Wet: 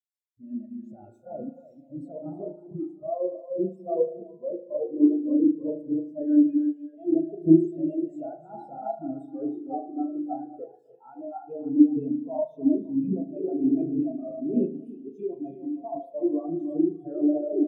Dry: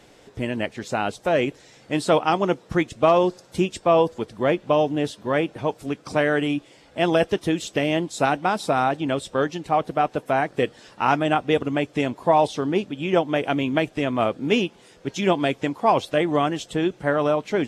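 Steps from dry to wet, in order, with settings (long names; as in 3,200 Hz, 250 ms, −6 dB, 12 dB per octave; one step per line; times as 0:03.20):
spike at every zero crossing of −16.5 dBFS
0:00.88–0:02.08: low-shelf EQ 320 Hz +8.5 dB
brickwall limiter −16 dBFS, peak gain reduction 10.5 dB
bouncing-ball delay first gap 310 ms, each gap 0.8×, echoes 5
spring reverb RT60 1.9 s, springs 37 ms, chirp 30 ms, DRR −1 dB
every bin expanded away from the loudest bin 4 to 1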